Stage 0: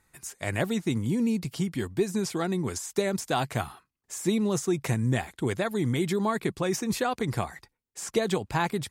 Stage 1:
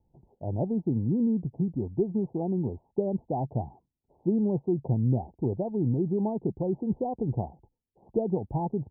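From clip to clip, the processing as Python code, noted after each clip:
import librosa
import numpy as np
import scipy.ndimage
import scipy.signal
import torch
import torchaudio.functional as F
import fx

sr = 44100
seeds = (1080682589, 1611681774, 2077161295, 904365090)

y = scipy.signal.sosfilt(scipy.signal.butter(16, 910.0, 'lowpass', fs=sr, output='sos'), x)
y = fx.low_shelf(y, sr, hz=420.0, db=6.5)
y = F.gain(torch.from_numpy(y), -4.5).numpy()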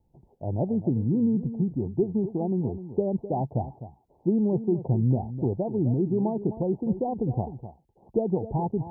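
y = x + 10.0 ** (-12.5 / 20.0) * np.pad(x, (int(256 * sr / 1000.0), 0))[:len(x)]
y = F.gain(torch.from_numpy(y), 2.0).numpy()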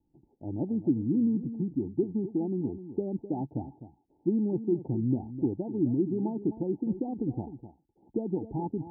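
y = fx.formant_cascade(x, sr, vowel='u')
y = F.gain(torch.from_numpy(y), 5.0).numpy()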